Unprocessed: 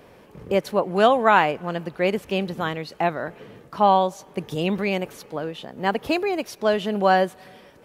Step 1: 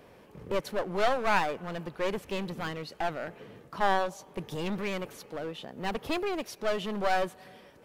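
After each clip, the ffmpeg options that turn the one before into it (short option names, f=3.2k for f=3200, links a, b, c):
-af "aeval=exprs='clip(val(0),-1,0.0447)':c=same,volume=-5dB"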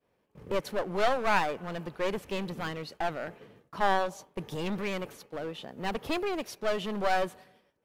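-af "agate=range=-33dB:threshold=-42dB:ratio=3:detection=peak"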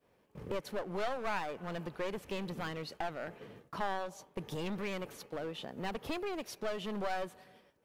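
-af "acompressor=threshold=-46dB:ratio=2,volume=3.5dB"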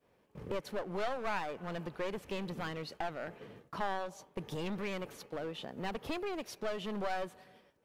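-af "highshelf=f=8.7k:g=-3.5"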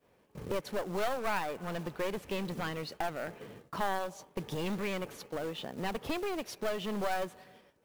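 -af "acrusher=bits=4:mode=log:mix=0:aa=0.000001,volume=3dB"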